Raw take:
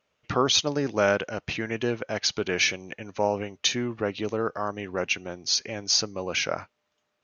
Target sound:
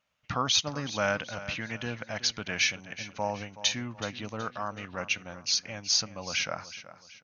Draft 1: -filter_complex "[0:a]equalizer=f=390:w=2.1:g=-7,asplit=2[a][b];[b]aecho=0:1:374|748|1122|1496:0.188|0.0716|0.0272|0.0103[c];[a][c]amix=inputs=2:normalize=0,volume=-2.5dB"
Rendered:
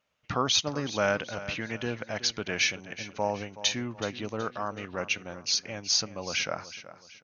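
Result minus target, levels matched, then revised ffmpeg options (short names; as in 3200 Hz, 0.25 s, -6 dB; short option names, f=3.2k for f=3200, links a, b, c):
500 Hz band +3.0 dB
-filter_complex "[0:a]equalizer=f=390:w=2.1:g=-16,asplit=2[a][b];[b]aecho=0:1:374|748|1122|1496:0.188|0.0716|0.0272|0.0103[c];[a][c]amix=inputs=2:normalize=0,volume=-2.5dB"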